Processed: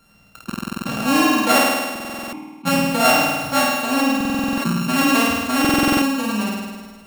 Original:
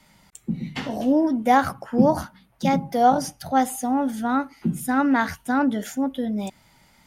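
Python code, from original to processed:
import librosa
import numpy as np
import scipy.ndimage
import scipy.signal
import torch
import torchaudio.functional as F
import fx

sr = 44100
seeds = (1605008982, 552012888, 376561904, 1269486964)

y = np.r_[np.sort(x[:len(x) // 32 * 32].reshape(-1, 32), axis=1).ravel(), x[len(x) // 32 * 32:]]
y = fx.vowel_filter(y, sr, vowel='u', at=(1.58, 2.65), fade=0.02)
y = fx.room_flutter(y, sr, wall_m=8.9, rt60_s=1.3)
y = fx.buffer_glitch(y, sr, at_s=(0.45, 1.91, 4.16, 5.6), block=2048, repeats=8)
y = fx.sustainer(y, sr, db_per_s=40.0)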